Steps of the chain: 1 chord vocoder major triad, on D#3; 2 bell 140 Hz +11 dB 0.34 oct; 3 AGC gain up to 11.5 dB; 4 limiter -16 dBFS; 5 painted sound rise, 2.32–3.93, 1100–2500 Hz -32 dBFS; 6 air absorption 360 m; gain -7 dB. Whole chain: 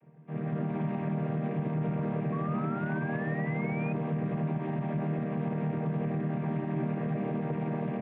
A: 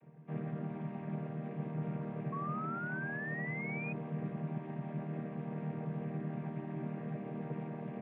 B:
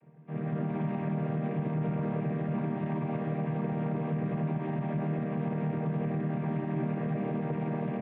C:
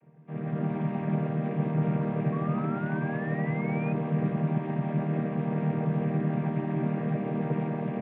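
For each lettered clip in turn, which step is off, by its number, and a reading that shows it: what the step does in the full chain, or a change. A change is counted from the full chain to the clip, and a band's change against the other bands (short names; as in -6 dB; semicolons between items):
3, crest factor change +4.0 dB; 5, 2 kHz band -4.5 dB; 4, mean gain reduction 2.0 dB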